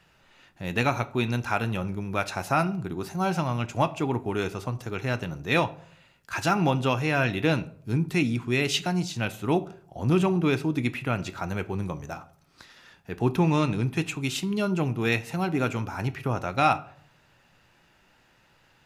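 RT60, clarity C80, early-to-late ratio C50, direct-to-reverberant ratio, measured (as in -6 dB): 0.60 s, 22.0 dB, 18.0 dB, 11.5 dB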